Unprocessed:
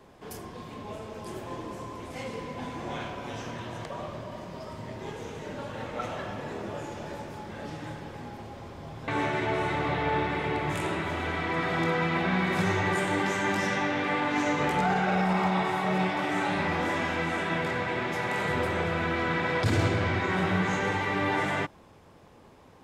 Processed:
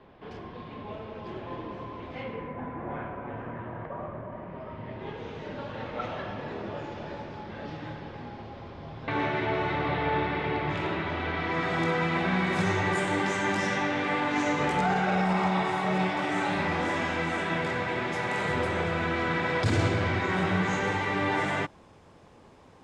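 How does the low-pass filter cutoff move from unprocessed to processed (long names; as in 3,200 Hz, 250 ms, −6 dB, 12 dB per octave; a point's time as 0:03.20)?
low-pass filter 24 dB per octave
0:02.14 3,700 Hz
0:02.62 1,900 Hz
0:04.29 1,900 Hz
0:05.40 4,700 Hz
0:11.34 4,700 Hz
0:11.79 9,800 Hz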